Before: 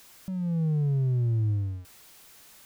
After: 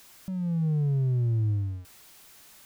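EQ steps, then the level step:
notch filter 490 Hz, Q 16
0.0 dB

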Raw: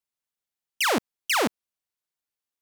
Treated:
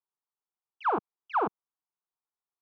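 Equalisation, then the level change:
low-pass filter 1,600 Hz 24 dB per octave
low-shelf EQ 340 Hz −11.5 dB
phaser with its sweep stopped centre 380 Hz, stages 8
+3.0 dB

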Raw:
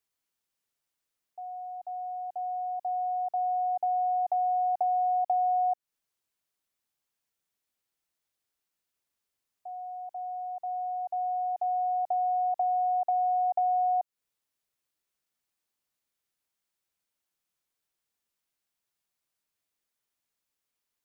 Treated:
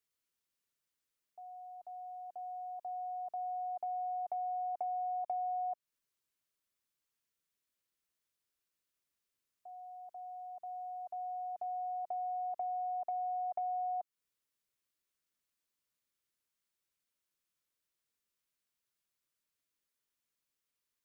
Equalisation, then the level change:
parametric band 770 Hz −9 dB 0.34 octaves
−3.0 dB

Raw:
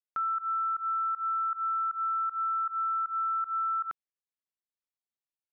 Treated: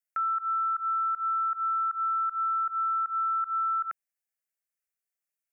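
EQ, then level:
tilt shelving filter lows −5 dB
phaser with its sweep stopped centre 1,000 Hz, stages 6
+3.0 dB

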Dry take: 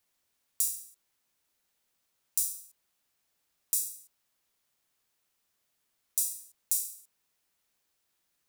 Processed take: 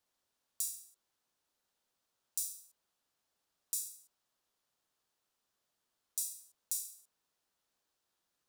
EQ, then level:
low-pass filter 4,000 Hz 6 dB per octave
low-shelf EQ 250 Hz −5.5 dB
parametric band 2,200 Hz −7 dB 0.76 octaves
0.0 dB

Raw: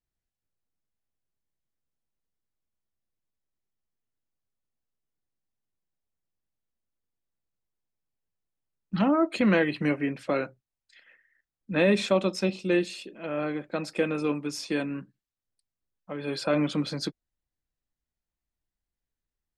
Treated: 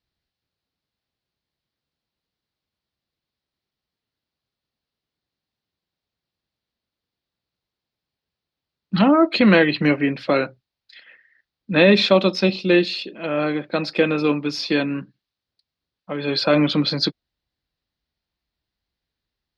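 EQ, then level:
high-pass filter 51 Hz
high shelf with overshoot 6,000 Hz −12 dB, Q 3
+8.0 dB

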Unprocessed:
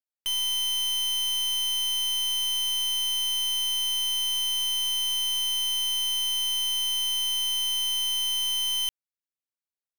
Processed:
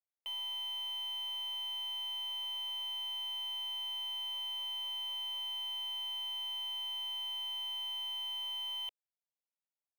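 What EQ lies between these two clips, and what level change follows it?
three-way crossover with the lows and the highs turned down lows −22 dB, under 430 Hz, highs −23 dB, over 3,000 Hz
parametric band 6,300 Hz −12 dB 0.98 octaves
phaser with its sweep stopped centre 640 Hz, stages 4
0.0 dB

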